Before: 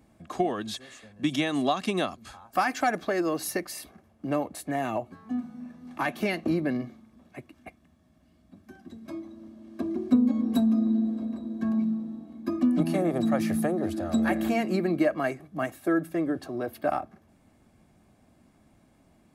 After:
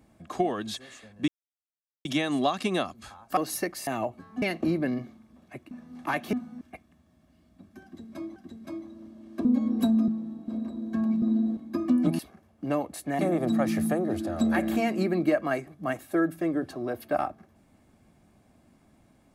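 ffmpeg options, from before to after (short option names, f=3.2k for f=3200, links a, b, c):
-filter_complex "[0:a]asplit=16[a][b][c][d][e][f][g][h][i][j][k][l][m][n][o][p];[a]atrim=end=1.28,asetpts=PTS-STARTPTS,afade=t=out:st=1.276:d=0.004:c=hsin,apad=pad_dur=0.77[q];[b]atrim=start=1.28:end=2.602,asetpts=PTS-STARTPTS,afade=t=in:d=0.004:c=hsin[r];[c]atrim=start=3.298:end=3.802[s];[d]atrim=start=4.798:end=5.352[t];[e]atrim=start=6.248:end=7.542[u];[f]atrim=start=5.628:end=6.252[v];[g]atrim=start=5.348:end=5.632[w];[h]atrim=start=7.538:end=9.292[x];[i]atrim=start=8.768:end=9.862[y];[j]atrim=start=10.178:end=10.812[z];[k]atrim=start=11.898:end=12.302[aa];[l]atrim=start=11.158:end=11.902[ab];[m]atrim=start=10.808:end=11.162[ac];[n]atrim=start=12.298:end=12.922[ad];[o]atrim=start=3.798:end=4.802[ae];[p]atrim=start=12.918[af];[q][r]concat=n=2:v=0:a=1[ag];[ag][s]acrossfade=d=0.004:c1=hsin:c2=hsin[ah];[ah][t]acrossfade=d=0.004:c1=hsin:c2=hsin[ai];[ai][u]acrossfade=d=0.004:c1=hsin:c2=hsin[aj];[aj][v]acrossfade=d=0.004:c1=hsin:c2=hsin[ak];[ak][w]acrossfade=d=0.004:c1=hsin:c2=hsin[al];[al][x]acrossfade=d=0.004:c1=hsin:c2=hsin[am];[am][y]acrossfade=d=0.004:c1=hsin:c2=hsin[an];[an][z]acrossfade=d=0.004:c1=hsin:c2=hsin[ao];[ao][aa]acrossfade=d=0.004:c1=hsin:c2=hsin[ap];[ap][ab]acrossfade=d=0.004:c1=hsin:c2=hsin[aq];[aq][ac]acrossfade=d=0.004:c1=hsin:c2=hsin[ar];[ar][ad]acrossfade=d=0.004:c1=hsin:c2=hsin[as];[as][ae]acrossfade=d=0.004:c1=hsin:c2=hsin[at];[at][af]acrossfade=d=0.004:c1=hsin:c2=hsin"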